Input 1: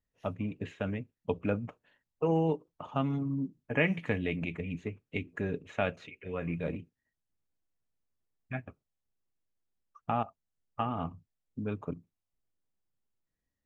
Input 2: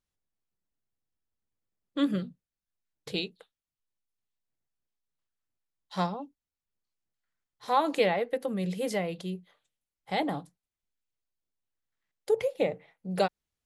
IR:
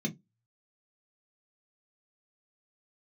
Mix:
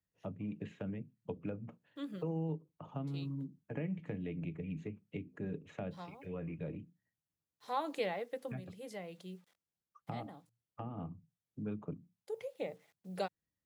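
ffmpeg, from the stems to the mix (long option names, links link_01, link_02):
-filter_complex "[0:a]lowshelf=frequency=140:gain=12,acrossover=split=120|630[link_01][link_02][link_03];[link_01]acompressor=threshold=-47dB:ratio=4[link_04];[link_02]acompressor=threshold=-32dB:ratio=4[link_05];[link_03]acompressor=threshold=-50dB:ratio=4[link_06];[link_04][link_05][link_06]amix=inputs=3:normalize=0,volume=-5dB,asplit=3[link_07][link_08][link_09];[link_08]volume=-21dB[link_10];[1:a]acrusher=bits=9:mix=0:aa=0.000001,volume=-11dB[link_11];[link_09]apad=whole_len=602010[link_12];[link_11][link_12]sidechaincompress=threshold=-44dB:ratio=5:attack=16:release=1200[link_13];[2:a]atrim=start_sample=2205[link_14];[link_10][link_14]afir=irnorm=-1:irlink=0[link_15];[link_07][link_13][link_15]amix=inputs=3:normalize=0,highpass=120"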